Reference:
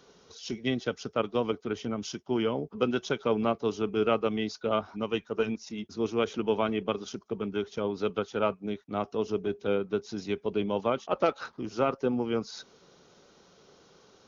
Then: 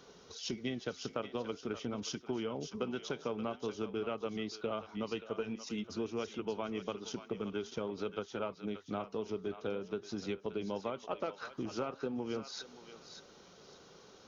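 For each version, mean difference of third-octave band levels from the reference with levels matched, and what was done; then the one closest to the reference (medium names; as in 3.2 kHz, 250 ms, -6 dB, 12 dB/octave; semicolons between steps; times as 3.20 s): 5.0 dB: compression, threshold -35 dBFS, peak gain reduction 14.5 dB; flange 0.48 Hz, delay 0.8 ms, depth 9.3 ms, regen -89%; on a send: thinning echo 578 ms, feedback 28%, high-pass 1.1 kHz, level -8 dB; on the sum: trim +5 dB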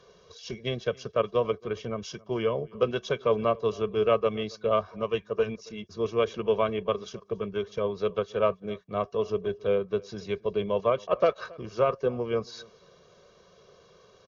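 2.5 dB: low-pass 3.9 kHz 6 dB/octave; comb 1.8 ms, depth 79%; echo from a far wall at 47 m, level -24 dB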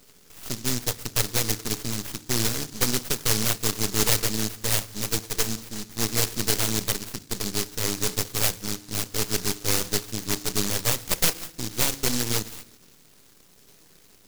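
14.5 dB: half-wave rectifier; FDN reverb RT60 0.8 s, low-frequency decay 1.35×, high-frequency decay 1×, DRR 13.5 dB; delay time shaken by noise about 5.4 kHz, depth 0.46 ms; trim +7 dB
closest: second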